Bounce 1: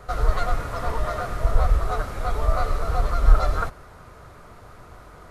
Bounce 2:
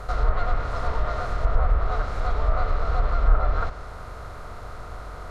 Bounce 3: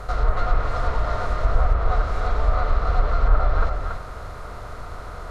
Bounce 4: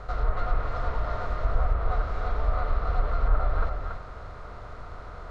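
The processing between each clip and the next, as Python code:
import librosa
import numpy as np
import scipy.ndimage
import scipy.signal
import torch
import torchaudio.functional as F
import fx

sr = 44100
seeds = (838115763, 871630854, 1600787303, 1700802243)

y1 = fx.bin_compress(x, sr, power=0.6)
y1 = fx.env_lowpass_down(y1, sr, base_hz=2100.0, full_db=-9.0)
y1 = F.gain(torch.from_numpy(y1), -5.0).numpy()
y2 = y1 + 10.0 ** (-5.5 / 20.0) * np.pad(y1, (int(282 * sr / 1000.0), 0))[:len(y1)]
y2 = F.gain(torch.from_numpy(y2), 1.5).numpy()
y3 = fx.air_absorb(y2, sr, metres=100.0)
y3 = F.gain(torch.from_numpy(y3), -5.5).numpy()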